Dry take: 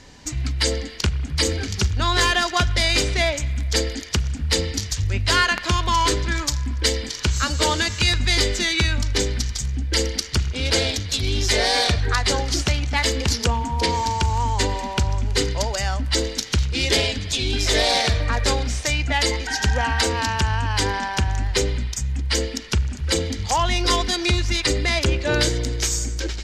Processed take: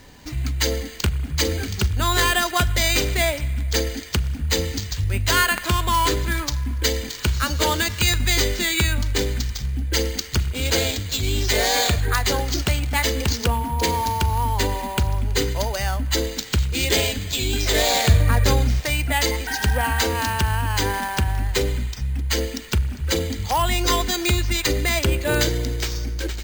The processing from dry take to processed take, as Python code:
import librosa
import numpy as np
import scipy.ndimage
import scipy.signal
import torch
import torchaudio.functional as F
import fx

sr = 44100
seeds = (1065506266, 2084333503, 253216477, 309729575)

y = fx.peak_eq(x, sr, hz=110.0, db=9.0, octaves=2.0, at=(18.07, 18.8))
y = np.repeat(scipy.signal.resample_poly(y, 1, 4), 4)[:len(y)]